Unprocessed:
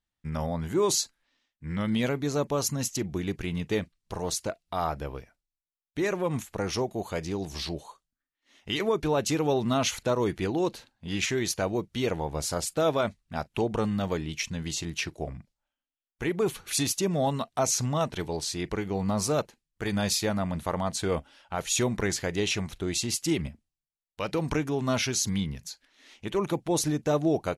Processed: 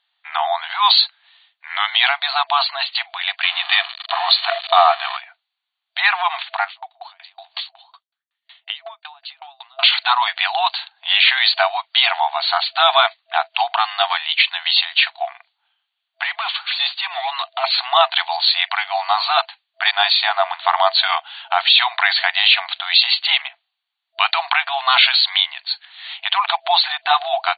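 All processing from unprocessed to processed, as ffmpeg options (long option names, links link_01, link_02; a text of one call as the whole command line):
ffmpeg -i in.wav -filter_complex "[0:a]asettb=1/sr,asplit=3[link_01][link_02][link_03];[link_01]atrim=end=3.434[link_04];[link_02]atrim=start=3.43:end=5.17,asetpts=PTS-STARTPTS,afade=type=in:duration=0.004:curve=qsin,afade=type=out:start_time=1.736:duration=0.004:curve=qsin,aeval=exprs='val(0)+0.5*0.015*sgn(val(0))':channel_layout=same,aecho=1:1:1.7:0.37,atrim=end_sample=76734[link_05];[link_03]atrim=start=5.166[link_06];[link_04][link_05]acrossfade=duration=0.004:curve1=hsin:curve2=qsin[link_07];[link_07][link_06]acrossfade=duration=0.004:curve1=qsin:curve2=hsin,asettb=1/sr,asplit=3[link_08][link_09][link_10];[link_08]atrim=end=6.644[link_11];[link_09]atrim=start=6.64:end=9.83,asetpts=PTS-STARTPTS,afade=type=in:duration=0.004:curve=qsin,afade=type=out:start_time=3.186:duration=0.004:curve=qsin,highpass=81,acompressor=threshold=-35dB:ratio=5:attack=3.2:release=140:knee=1:detection=peak,aeval=exprs='val(0)*pow(10,-37*if(lt(mod(5.4*n/s,1),2*abs(5.4)/1000),1-mod(5.4*n/s,1)/(2*abs(5.4)/1000),(mod(5.4*n/s,1)-2*abs(5.4)/1000)/(1-2*abs(5.4)/1000))/20)':channel_layout=same[link_12];[link_10]atrim=start=9.826[link_13];[link_11][link_12]acrossfade=duration=0.004:curve1=hsin:curve2=qsin[link_14];[link_14][link_13]acrossfade=duration=0.004:curve1=qsin:curve2=hsin,asettb=1/sr,asplit=3[link_15][link_16][link_17];[link_15]atrim=end=16.234[link_18];[link_16]atrim=start=16.23:end=17.64,asetpts=PTS-STARTPTS,afade=type=in:duration=0.004:curve=qsin,afade=type=out:start_time=1.406:duration=0.004:curve=qsin,highpass=frequency=740:width=0.5412,highpass=frequency=740:width=1.3066,acompressor=threshold=-33dB:ratio=6:attack=3.2:release=140:knee=1:detection=peak,asoftclip=type=hard:threshold=-37dB[link_19];[link_17]atrim=start=17.636[link_20];[link_18][link_19]acrossfade=duration=0.004:curve1=hsin:curve2=qsin[link_21];[link_21][link_20]acrossfade=duration=0.004:curve1=qsin:curve2=hsin,asettb=1/sr,asplit=3[link_22][link_23][link_24];[link_22]atrim=end=19.914[link_25];[link_23]atrim=start=19.91:end=20.61,asetpts=PTS-STARTPTS,afade=type=in:duration=0.004:curve=qsin,afade=type=out:start_time=0.696:duration=0.004:curve=qsin,aeval=exprs='sgn(val(0))*max(abs(val(0))-0.00251,0)':channel_layout=same,adynamicequalizer=threshold=0.00708:dfrequency=1500:dqfactor=0.7:tfrequency=1500:tqfactor=0.7:attack=5:release=100:ratio=0.375:range=2:mode=cutabove:tftype=highshelf[link_26];[link_24]atrim=start=20.606[link_27];[link_25][link_26]acrossfade=duration=0.004:curve1=hsin:curve2=qsin[link_28];[link_28][link_27]acrossfade=duration=0.004:curve1=qsin:curve2=hsin,afftfilt=real='re*between(b*sr/4096,660,4600)':imag='im*between(b*sr/4096,660,4600)':win_size=4096:overlap=0.75,equalizer=frequency=3400:width_type=o:width=0.72:gain=7.5,alimiter=level_in=19dB:limit=-1dB:release=50:level=0:latency=1,volume=-1dB" out.wav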